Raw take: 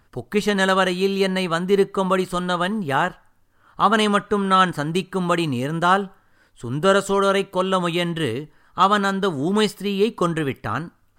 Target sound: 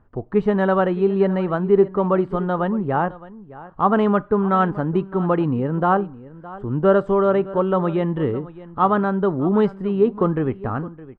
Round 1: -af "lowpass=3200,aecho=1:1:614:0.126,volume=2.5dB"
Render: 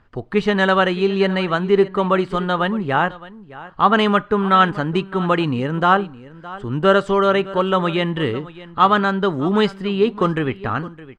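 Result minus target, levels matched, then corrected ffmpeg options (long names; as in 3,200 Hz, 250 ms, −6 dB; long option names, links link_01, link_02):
4,000 Hz band +16.0 dB
-af "lowpass=950,aecho=1:1:614:0.126,volume=2.5dB"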